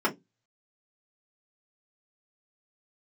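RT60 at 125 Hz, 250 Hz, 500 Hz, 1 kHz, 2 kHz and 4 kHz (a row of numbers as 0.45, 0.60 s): 0.40, 0.25, 0.20, 0.15, 0.10, 0.15 s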